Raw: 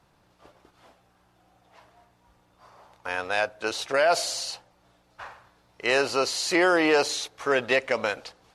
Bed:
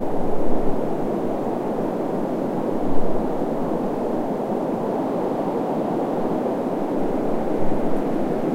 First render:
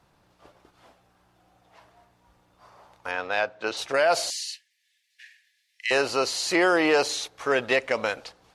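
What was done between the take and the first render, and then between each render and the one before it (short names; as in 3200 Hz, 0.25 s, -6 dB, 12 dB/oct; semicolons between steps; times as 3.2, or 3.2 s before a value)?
3.11–3.77 BPF 110–4600 Hz; 4.3–5.91 Chebyshev high-pass 1700 Hz, order 8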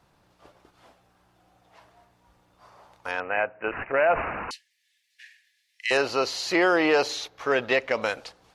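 3.2–4.51 careless resampling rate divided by 8×, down none, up filtered; 5.97–8.02 bell 8900 Hz -13 dB 0.68 oct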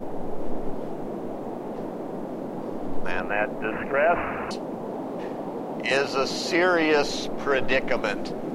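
add bed -9 dB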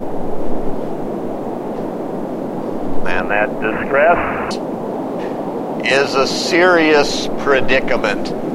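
gain +10 dB; limiter -1 dBFS, peak gain reduction 3 dB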